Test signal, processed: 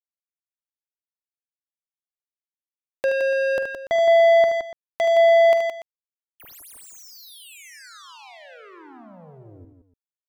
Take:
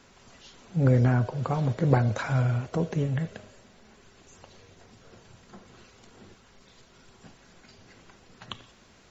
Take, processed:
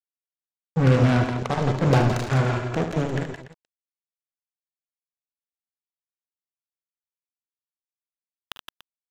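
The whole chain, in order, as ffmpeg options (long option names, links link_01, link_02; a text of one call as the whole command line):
ffmpeg -i in.wav -filter_complex "[0:a]acrusher=bits=3:mix=0:aa=0.5,asplit=2[link_01][link_02];[link_02]aecho=0:1:45|53|75|166|169|289:0.178|0.126|0.376|0.266|0.376|0.158[link_03];[link_01][link_03]amix=inputs=2:normalize=0,volume=2dB" out.wav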